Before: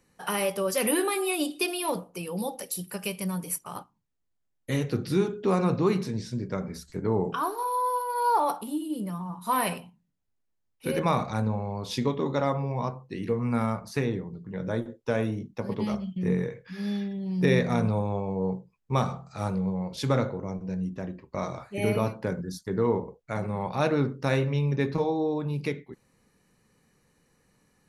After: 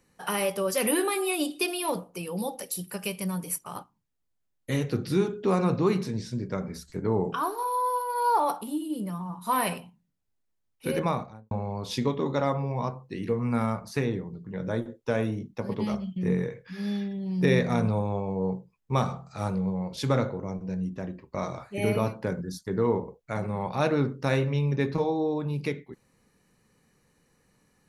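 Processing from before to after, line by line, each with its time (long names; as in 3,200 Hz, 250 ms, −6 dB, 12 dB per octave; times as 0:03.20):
0:10.92–0:11.51: fade out and dull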